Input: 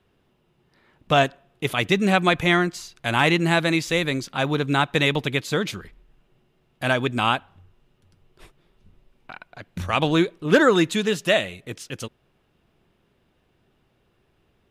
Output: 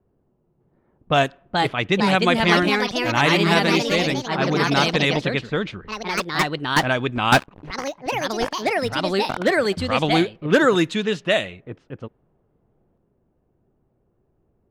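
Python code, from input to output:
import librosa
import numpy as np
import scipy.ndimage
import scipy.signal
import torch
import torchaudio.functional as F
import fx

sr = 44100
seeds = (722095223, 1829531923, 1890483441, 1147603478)

y = fx.env_lowpass(x, sr, base_hz=700.0, full_db=-14.0)
y = fx.leveller(y, sr, passes=5, at=(7.32, 9.47))
y = fx.echo_pitch(y, sr, ms=607, semitones=3, count=3, db_per_echo=-3.0)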